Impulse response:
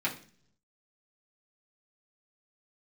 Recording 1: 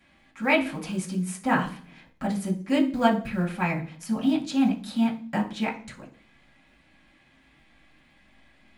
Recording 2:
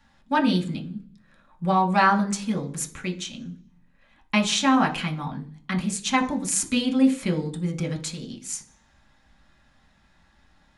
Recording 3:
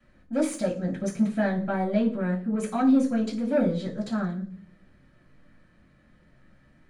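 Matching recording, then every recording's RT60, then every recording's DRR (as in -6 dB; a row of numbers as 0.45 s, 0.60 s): 1; 0.50 s, no single decay rate, 0.50 s; -6.5 dB, 0.0 dB, -16.0 dB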